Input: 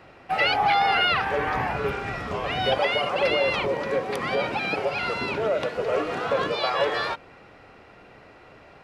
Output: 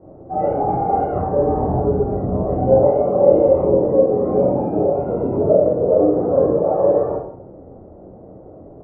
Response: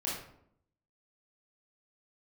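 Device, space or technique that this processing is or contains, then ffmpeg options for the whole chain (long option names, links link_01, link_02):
next room: -filter_complex "[0:a]lowpass=frequency=630:width=0.5412,lowpass=frequency=630:width=1.3066[link_01];[1:a]atrim=start_sample=2205[link_02];[link_01][link_02]afir=irnorm=-1:irlink=0,volume=7.5dB"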